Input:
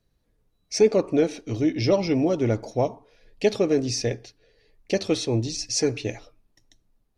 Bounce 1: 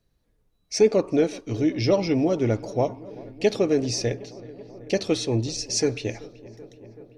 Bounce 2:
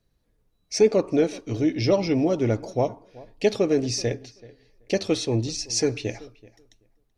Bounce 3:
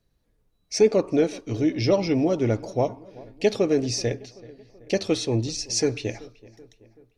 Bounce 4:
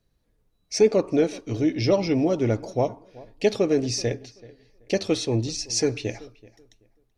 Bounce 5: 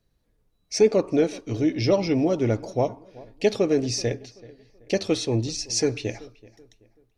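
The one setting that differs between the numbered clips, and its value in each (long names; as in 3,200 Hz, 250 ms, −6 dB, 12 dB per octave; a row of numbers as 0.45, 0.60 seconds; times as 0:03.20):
feedback echo with a low-pass in the loop, feedback: 84, 16, 56, 24, 37%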